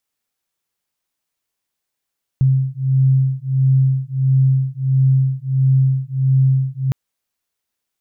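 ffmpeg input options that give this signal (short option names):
-f lavfi -i "aevalsrc='0.168*(sin(2*PI*132*t)+sin(2*PI*133.5*t))':d=4.51:s=44100"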